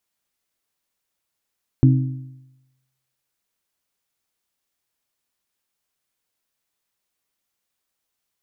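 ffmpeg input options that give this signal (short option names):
-f lavfi -i "aevalsrc='0.376*pow(10,-3*t/0.96)*sin(2*PI*131*t)+0.2*pow(10,-3*t/0.78)*sin(2*PI*262*t)+0.106*pow(10,-3*t/0.738)*sin(2*PI*314.4*t)':d=1.55:s=44100"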